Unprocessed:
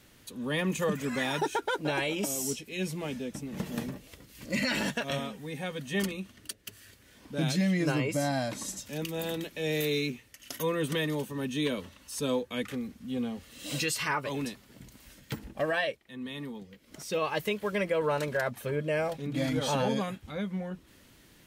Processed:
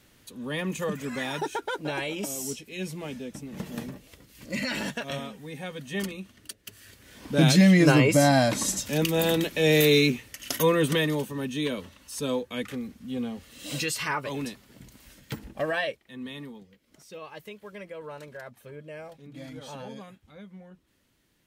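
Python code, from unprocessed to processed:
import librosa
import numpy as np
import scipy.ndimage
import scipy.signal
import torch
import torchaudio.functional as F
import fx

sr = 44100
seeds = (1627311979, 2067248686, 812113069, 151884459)

y = fx.gain(x, sr, db=fx.line((6.61, -1.0), (7.32, 10.0), (10.47, 10.0), (11.53, 1.0), (16.27, 1.0), (17.1, -12.0)))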